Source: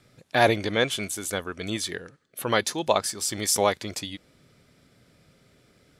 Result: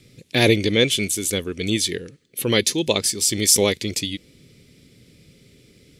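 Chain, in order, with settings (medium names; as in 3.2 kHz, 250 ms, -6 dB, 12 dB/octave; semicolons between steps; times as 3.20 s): high-order bell 1 kHz -15.5 dB; trim +8.5 dB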